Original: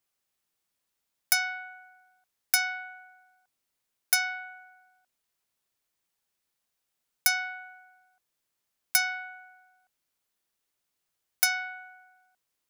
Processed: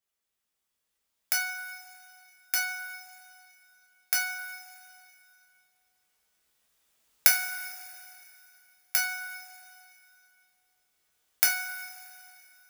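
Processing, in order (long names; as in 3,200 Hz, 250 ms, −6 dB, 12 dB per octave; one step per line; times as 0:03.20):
camcorder AGC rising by 5.2 dB per second
coupled-rooms reverb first 0.32 s, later 2.8 s, from −18 dB, DRR −2 dB
level −8 dB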